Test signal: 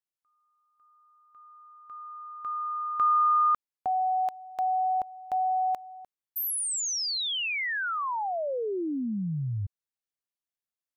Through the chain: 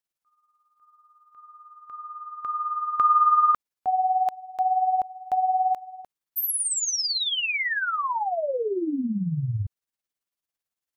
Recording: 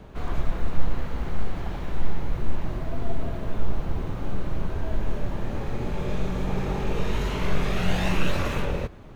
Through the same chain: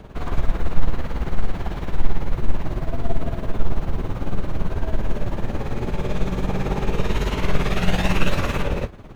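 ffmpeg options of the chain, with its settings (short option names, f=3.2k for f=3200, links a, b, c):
-af "tremolo=f=18:d=0.6,volume=6.5dB"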